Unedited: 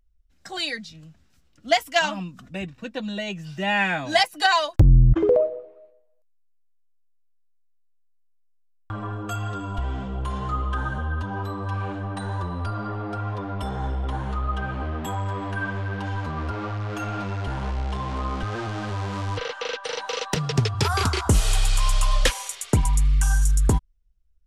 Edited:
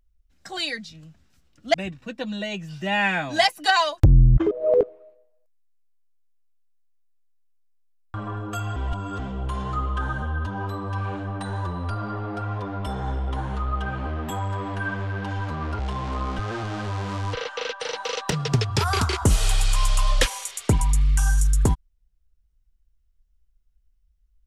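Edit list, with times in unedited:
0:01.74–0:02.50: remove
0:05.27–0:05.59: reverse
0:09.52–0:09.95: reverse
0:16.55–0:17.83: remove

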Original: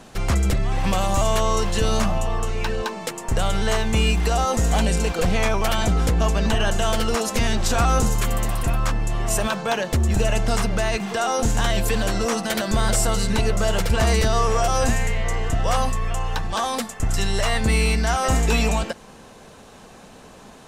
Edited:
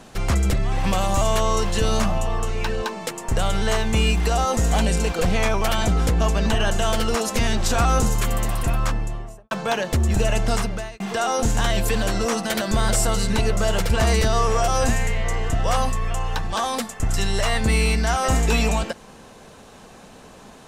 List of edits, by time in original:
0:08.82–0:09.51: fade out and dull
0:10.54–0:11.00: fade out

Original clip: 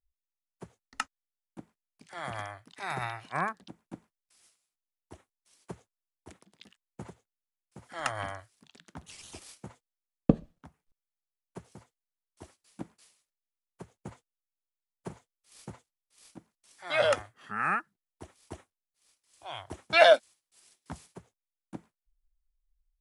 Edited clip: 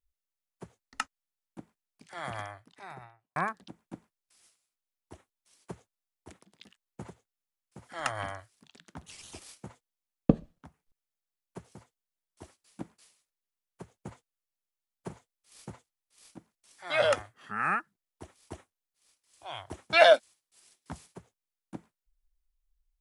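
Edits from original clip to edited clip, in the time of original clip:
0:02.29–0:03.36: fade out and dull

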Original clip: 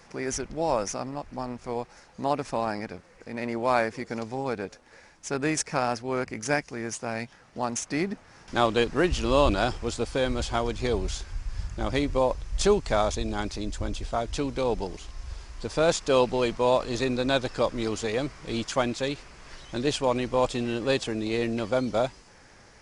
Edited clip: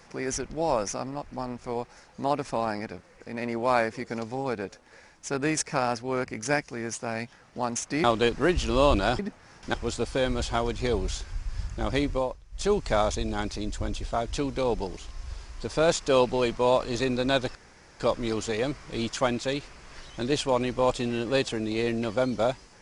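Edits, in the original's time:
0:08.04–0:08.59: move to 0:09.74
0:12.07–0:12.82: duck −15.5 dB, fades 0.32 s
0:17.55: splice in room tone 0.45 s

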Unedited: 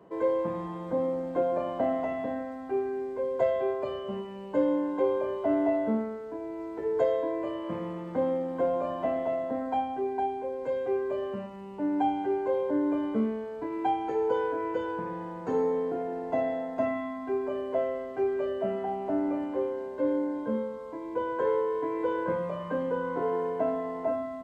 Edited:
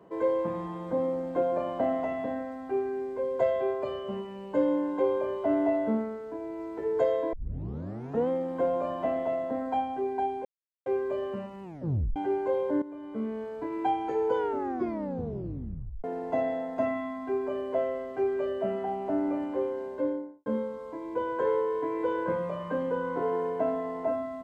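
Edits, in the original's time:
0:07.33: tape start 0.96 s
0:10.45–0:10.86: silence
0:11.63: tape stop 0.53 s
0:12.82–0:13.42: fade in quadratic, from −15 dB
0:14.37: tape stop 1.67 s
0:19.90–0:20.46: fade out and dull

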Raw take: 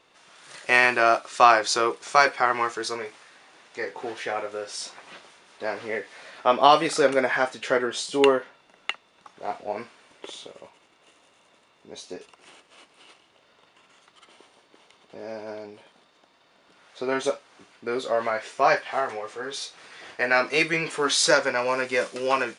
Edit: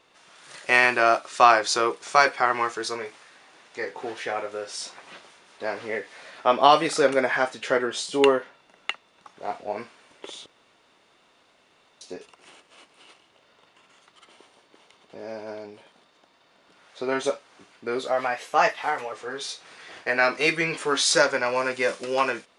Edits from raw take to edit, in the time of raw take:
0:10.46–0:12.01: fill with room tone
0:18.07–0:19.25: play speed 112%

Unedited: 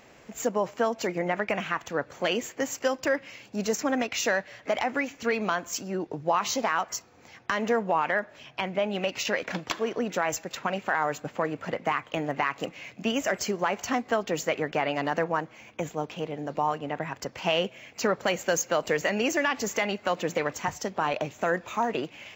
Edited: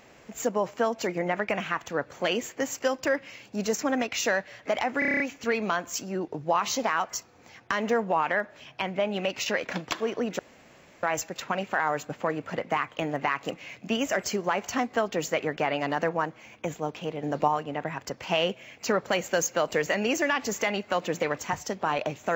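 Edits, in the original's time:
0:04.99: stutter 0.03 s, 8 plays
0:10.18: splice in room tone 0.64 s
0:16.38–0:16.63: clip gain +4.5 dB

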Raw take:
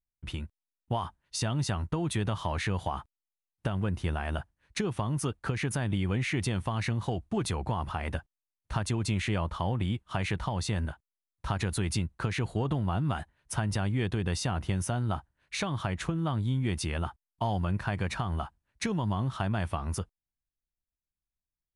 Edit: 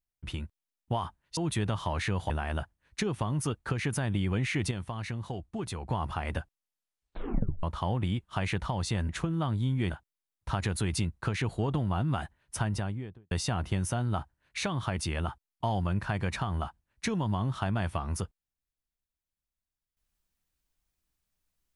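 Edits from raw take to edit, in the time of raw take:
0:01.37–0:01.96: remove
0:02.89–0:04.08: remove
0:06.49–0:07.68: clip gain −5.5 dB
0:08.18: tape stop 1.23 s
0:13.56–0:14.28: fade out and dull
0:15.94–0:16.75: move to 0:10.87

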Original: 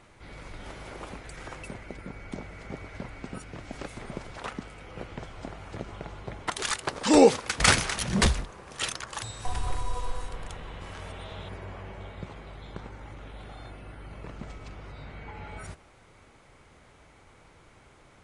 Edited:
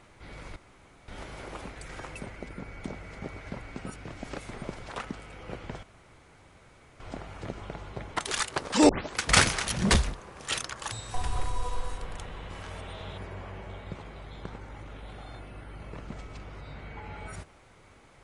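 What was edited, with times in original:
0:00.56: splice in room tone 0.52 s
0:05.31: splice in room tone 1.17 s
0:07.20: tape start 0.28 s

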